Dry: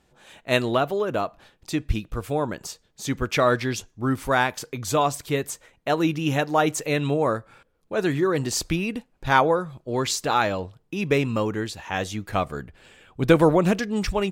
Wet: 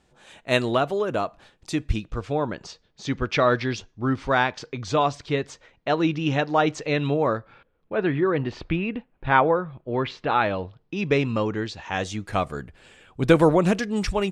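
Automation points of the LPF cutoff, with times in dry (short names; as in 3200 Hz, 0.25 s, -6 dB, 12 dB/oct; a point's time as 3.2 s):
LPF 24 dB/oct
1.82 s 10000 Hz
2.37 s 5300 Hz
7.29 s 5300 Hz
7.93 s 3000 Hz
10.24 s 3000 Hz
11.01 s 5800 Hz
11.77 s 5800 Hz
12.33 s 11000 Hz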